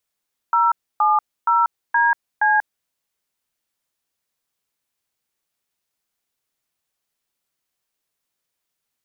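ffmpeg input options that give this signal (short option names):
-f lavfi -i "aevalsrc='0.158*clip(min(mod(t,0.471),0.188-mod(t,0.471))/0.002,0,1)*(eq(floor(t/0.471),0)*(sin(2*PI*941*mod(t,0.471))+sin(2*PI*1336*mod(t,0.471)))+eq(floor(t/0.471),1)*(sin(2*PI*852*mod(t,0.471))+sin(2*PI*1209*mod(t,0.471)))+eq(floor(t/0.471),2)*(sin(2*PI*941*mod(t,0.471))+sin(2*PI*1336*mod(t,0.471)))+eq(floor(t/0.471),3)*(sin(2*PI*941*mod(t,0.471))+sin(2*PI*1633*mod(t,0.471)))+eq(floor(t/0.471),4)*(sin(2*PI*852*mod(t,0.471))+sin(2*PI*1633*mod(t,0.471))))':d=2.355:s=44100"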